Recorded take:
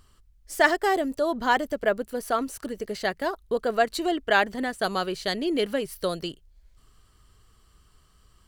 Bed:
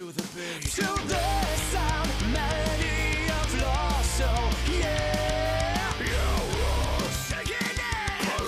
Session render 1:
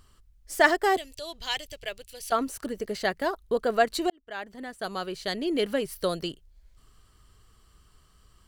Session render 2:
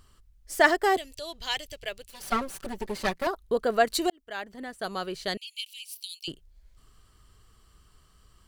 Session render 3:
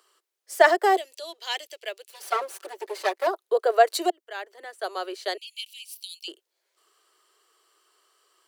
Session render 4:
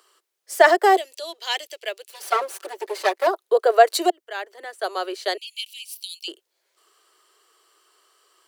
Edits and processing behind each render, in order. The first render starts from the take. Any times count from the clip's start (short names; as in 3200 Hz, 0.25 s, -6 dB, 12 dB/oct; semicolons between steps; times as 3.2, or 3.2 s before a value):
0.97–2.32 EQ curve 130 Hz 0 dB, 220 Hz -28 dB, 340 Hz -17 dB, 720 Hz -14 dB, 1400 Hz -16 dB, 2600 Hz +5 dB, 5500 Hz +4 dB, 16000 Hz -2 dB; 4.1–5.81 fade in
2.09–3.27 minimum comb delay 5.2 ms; 3.85–4.42 high shelf 4200 Hz +6.5 dB; 5.37–6.28 steep high-pass 2400 Hz 96 dB/oct
steep high-pass 340 Hz 72 dB/oct; dynamic EQ 640 Hz, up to +6 dB, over -36 dBFS, Q 1.3
gain +4.5 dB; limiter -2 dBFS, peak gain reduction 2.5 dB